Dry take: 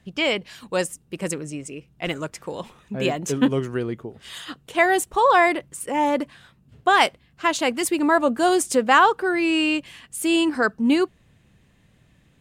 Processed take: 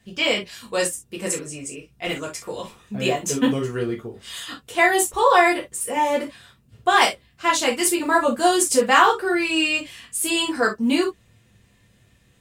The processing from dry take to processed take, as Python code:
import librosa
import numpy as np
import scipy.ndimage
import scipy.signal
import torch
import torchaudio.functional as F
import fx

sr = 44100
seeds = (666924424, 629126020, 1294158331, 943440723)

y = fx.high_shelf(x, sr, hz=3600.0, db=7.0)
y = fx.quant_float(y, sr, bits=6)
y = fx.rev_gated(y, sr, seeds[0], gate_ms=90, shape='falling', drr_db=-2.5)
y = y * librosa.db_to_amplitude(-4.5)